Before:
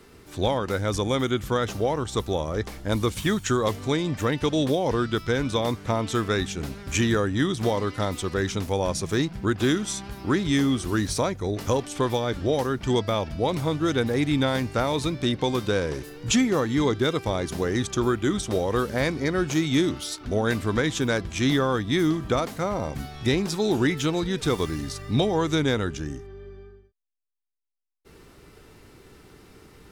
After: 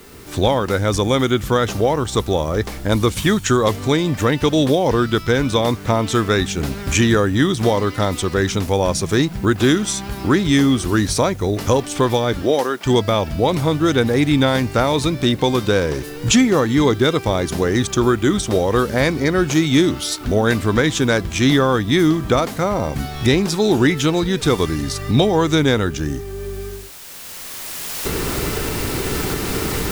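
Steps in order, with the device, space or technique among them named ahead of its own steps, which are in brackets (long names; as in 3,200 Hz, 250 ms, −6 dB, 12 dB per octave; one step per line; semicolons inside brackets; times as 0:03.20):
cheap recorder with automatic gain (white noise bed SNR 32 dB; camcorder AGC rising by 11 dB per second)
0:12.41–0:12.85: high-pass filter 170 Hz → 530 Hz 12 dB per octave
level +7.5 dB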